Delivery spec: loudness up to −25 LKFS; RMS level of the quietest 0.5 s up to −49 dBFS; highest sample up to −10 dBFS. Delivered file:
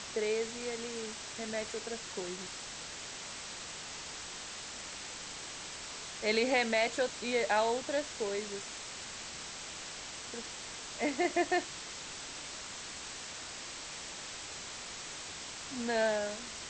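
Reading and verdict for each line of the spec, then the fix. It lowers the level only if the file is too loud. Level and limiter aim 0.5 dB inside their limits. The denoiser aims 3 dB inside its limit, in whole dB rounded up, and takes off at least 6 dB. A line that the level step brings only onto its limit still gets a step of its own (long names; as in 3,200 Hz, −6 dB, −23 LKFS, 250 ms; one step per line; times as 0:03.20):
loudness −36.5 LKFS: in spec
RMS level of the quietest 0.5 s −44 dBFS: out of spec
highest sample −16.5 dBFS: in spec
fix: broadband denoise 8 dB, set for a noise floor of −44 dBFS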